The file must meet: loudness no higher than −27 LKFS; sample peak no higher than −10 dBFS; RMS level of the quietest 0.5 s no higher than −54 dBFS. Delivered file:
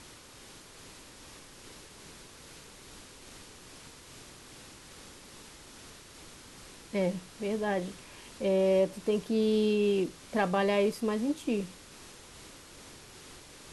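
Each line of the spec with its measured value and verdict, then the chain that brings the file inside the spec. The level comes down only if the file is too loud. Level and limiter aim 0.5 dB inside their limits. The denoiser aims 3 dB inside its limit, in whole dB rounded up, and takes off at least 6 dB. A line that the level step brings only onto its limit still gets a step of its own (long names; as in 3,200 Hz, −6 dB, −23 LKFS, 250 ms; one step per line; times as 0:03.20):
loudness −30.0 LKFS: in spec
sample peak −13.5 dBFS: in spec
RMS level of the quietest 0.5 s −52 dBFS: out of spec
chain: broadband denoise 6 dB, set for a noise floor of −52 dBFS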